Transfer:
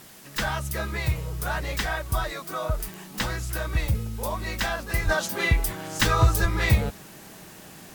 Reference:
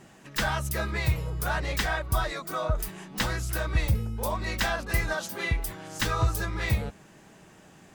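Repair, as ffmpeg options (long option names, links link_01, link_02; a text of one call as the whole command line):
ffmpeg -i in.wav -filter_complex "[0:a]adeclick=threshold=4,asplit=3[link_01][link_02][link_03];[link_01]afade=type=out:start_time=5.04:duration=0.02[link_04];[link_02]highpass=frequency=140:width=0.5412,highpass=frequency=140:width=1.3066,afade=type=in:start_time=5.04:duration=0.02,afade=type=out:start_time=5.16:duration=0.02[link_05];[link_03]afade=type=in:start_time=5.16:duration=0.02[link_06];[link_04][link_05][link_06]amix=inputs=3:normalize=0,asplit=3[link_07][link_08][link_09];[link_07]afade=type=out:start_time=6.41:duration=0.02[link_10];[link_08]highpass=frequency=140:width=0.5412,highpass=frequency=140:width=1.3066,afade=type=in:start_time=6.41:duration=0.02,afade=type=out:start_time=6.53:duration=0.02[link_11];[link_09]afade=type=in:start_time=6.53:duration=0.02[link_12];[link_10][link_11][link_12]amix=inputs=3:normalize=0,afwtdn=0.0035,asetnsamples=nb_out_samples=441:pad=0,asendcmd='5.09 volume volume -6dB',volume=0dB" out.wav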